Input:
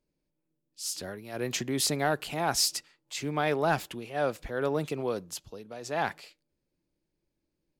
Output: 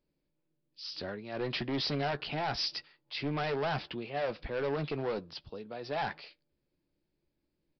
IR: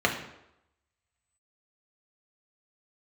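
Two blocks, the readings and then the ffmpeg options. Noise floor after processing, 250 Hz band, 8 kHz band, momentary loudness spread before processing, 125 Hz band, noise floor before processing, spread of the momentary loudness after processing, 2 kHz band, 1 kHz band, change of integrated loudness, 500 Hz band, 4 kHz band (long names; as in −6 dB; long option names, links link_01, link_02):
−82 dBFS, −3.5 dB, −23.5 dB, 13 LU, −2.0 dB, −82 dBFS, 11 LU, −4.0 dB, −4.5 dB, −4.5 dB, −4.0 dB, −3.0 dB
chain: -filter_complex "[0:a]aresample=11025,asoftclip=type=hard:threshold=-29.5dB,aresample=44100,asplit=2[link_01][link_02];[link_02]adelay=14,volume=-12dB[link_03];[link_01][link_03]amix=inputs=2:normalize=0"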